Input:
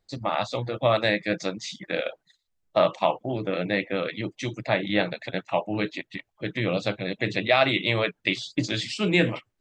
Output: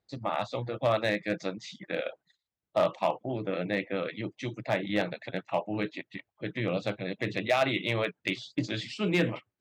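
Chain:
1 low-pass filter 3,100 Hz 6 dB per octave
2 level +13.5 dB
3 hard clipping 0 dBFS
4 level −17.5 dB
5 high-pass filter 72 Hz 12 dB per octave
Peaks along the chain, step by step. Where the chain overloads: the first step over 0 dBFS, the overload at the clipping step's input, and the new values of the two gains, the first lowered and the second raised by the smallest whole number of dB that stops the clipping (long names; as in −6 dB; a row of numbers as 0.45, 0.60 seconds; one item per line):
−7.5, +6.0, 0.0, −17.5, −15.5 dBFS
step 2, 6.0 dB
step 2 +7.5 dB, step 4 −11.5 dB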